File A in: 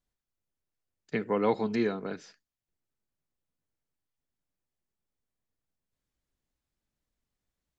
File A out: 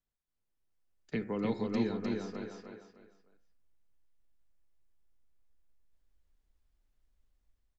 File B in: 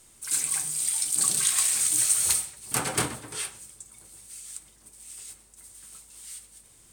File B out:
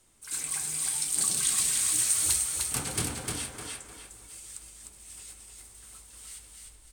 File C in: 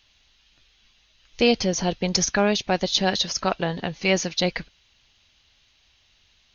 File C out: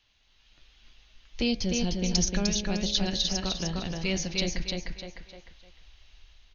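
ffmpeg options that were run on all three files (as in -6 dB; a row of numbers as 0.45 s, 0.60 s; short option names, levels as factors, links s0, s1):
-filter_complex "[0:a]highshelf=f=3800:g=-6,bandreject=f=69.6:t=h:w=4,bandreject=f=139.2:t=h:w=4,bandreject=f=208.8:t=h:w=4,bandreject=f=278.4:t=h:w=4,bandreject=f=348:t=h:w=4,bandreject=f=417.6:t=h:w=4,bandreject=f=487.2:t=h:w=4,bandreject=f=556.8:t=h:w=4,bandreject=f=626.4:t=h:w=4,bandreject=f=696:t=h:w=4,bandreject=f=765.6:t=h:w=4,bandreject=f=835.2:t=h:w=4,bandreject=f=904.8:t=h:w=4,bandreject=f=974.4:t=h:w=4,bandreject=f=1044:t=h:w=4,bandreject=f=1113.6:t=h:w=4,bandreject=f=1183.2:t=h:w=4,bandreject=f=1252.8:t=h:w=4,bandreject=f=1322.4:t=h:w=4,bandreject=f=1392:t=h:w=4,bandreject=f=1461.6:t=h:w=4,bandreject=f=1531.2:t=h:w=4,bandreject=f=1600.8:t=h:w=4,bandreject=f=1670.4:t=h:w=4,bandreject=f=1740:t=h:w=4,bandreject=f=1809.6:t=h:w=4,bandreject=f=1879.2:t=h:w=4,bandreject=f=1948.8:t=h:w=4,bandreject=f=2018.4:t=h:w=4,bandreject=f=2088:t=h:w=4,bandreject=f=2157.6:t=h:w=4,bandreject=f=2227.2:t=h:w=4,bandreject=f=2296.8:t=h:w=4,bandreject=f=2366.4:t=h:w=4,bandreject=f=2436:t=h:w=4,bandreject=f=2505.6:t=h:w=4,dynaudnorm=f=170:g=5:m=2.11,asubboost=boost=7:cutoff=55,aecho=1:1:303|606|909|1212:0.631|0.189|0.0568|0.017,acrossover=split=290|3000[s0][s1][s2];[s1]acompressor=threshold=0.0126:ratio=3[s3];[s0][s3][s2]amix=inputs=3:normalize=0,volume=0.562"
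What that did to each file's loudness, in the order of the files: -5.0 LU, -2.5 LU, -5.5 LU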